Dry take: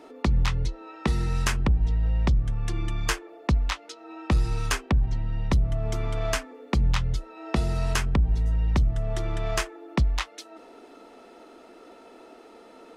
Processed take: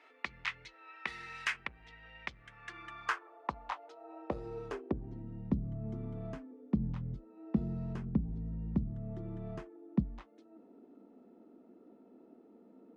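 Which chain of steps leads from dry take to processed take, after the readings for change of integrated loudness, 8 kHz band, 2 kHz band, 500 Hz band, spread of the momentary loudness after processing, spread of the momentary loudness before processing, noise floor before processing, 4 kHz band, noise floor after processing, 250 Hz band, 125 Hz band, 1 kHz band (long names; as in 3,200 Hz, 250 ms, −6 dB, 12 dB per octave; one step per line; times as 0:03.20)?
−12.0 dB, below −20 dB, −7.5 dB, −11.0 dB, 19 LU, 7 LU, −50 dBFS, −15.0 dB, −62 dBFS, −5.0 dB, −14.0 dB, −9.5 dB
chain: band-pass filter sweep 2,100 Hz → 210 Hz, 0:02.40–0:05.65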